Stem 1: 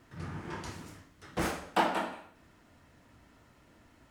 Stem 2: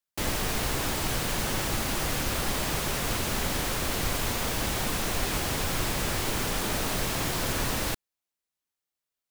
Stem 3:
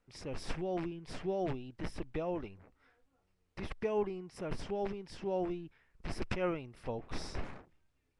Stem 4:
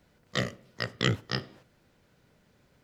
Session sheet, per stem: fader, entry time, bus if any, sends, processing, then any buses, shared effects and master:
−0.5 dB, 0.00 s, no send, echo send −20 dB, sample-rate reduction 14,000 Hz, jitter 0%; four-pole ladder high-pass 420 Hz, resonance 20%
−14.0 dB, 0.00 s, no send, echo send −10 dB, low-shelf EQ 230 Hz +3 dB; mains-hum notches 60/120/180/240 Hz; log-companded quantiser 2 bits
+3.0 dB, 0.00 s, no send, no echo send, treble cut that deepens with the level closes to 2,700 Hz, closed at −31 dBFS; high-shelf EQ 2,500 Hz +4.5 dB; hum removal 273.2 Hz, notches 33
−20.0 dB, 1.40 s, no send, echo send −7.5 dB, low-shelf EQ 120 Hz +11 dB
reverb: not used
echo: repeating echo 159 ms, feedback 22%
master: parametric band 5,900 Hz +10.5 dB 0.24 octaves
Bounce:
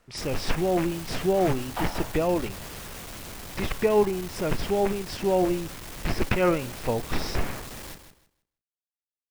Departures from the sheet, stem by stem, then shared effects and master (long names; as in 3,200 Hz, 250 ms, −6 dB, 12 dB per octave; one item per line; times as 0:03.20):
stem 3 +3.0 dB → +12.0 dB
master: missing parametric band 5,900 Hz +10.5 dB 0.24 octaves